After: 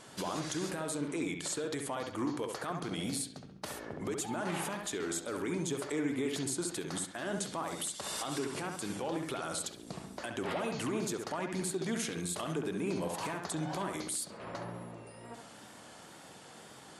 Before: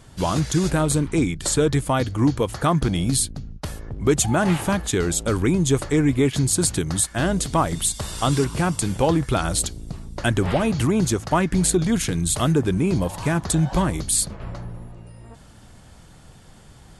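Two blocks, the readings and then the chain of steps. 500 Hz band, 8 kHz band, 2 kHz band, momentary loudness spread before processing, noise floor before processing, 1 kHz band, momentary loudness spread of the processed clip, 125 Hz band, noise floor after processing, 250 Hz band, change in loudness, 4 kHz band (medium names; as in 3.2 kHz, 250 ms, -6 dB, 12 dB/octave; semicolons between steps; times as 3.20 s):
-13.0 dB, -14.5 dB, -11.5 dB, 6 LU, -47 dBFS, -13.0 dB, 14 LU, -21.0 dB, -53 dBFS, -15.0 dB, -15.0 dB, -11.5 dB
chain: high-pass 300 Hz 12 dB/octave; compression 2:1, threshold -37 dBFS, peak gain reduction 12.5 dB; peak limiter -27 dBFS, peak gain reduction 11 dB; wow and flutter 41 cents; feedback echo behind a low-pass 68 ms, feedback 39%, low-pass 3.1 kHz, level -4.5 dB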